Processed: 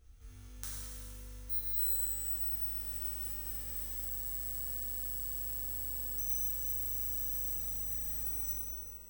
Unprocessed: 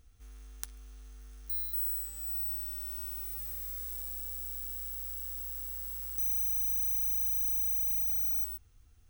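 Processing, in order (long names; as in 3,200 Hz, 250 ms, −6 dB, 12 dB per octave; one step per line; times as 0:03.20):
reverb reduction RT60 1 s
reverb with rising layers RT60 2.1 s, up +12 semitones, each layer −8 dB, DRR −9.5 dB
level −6.5 dB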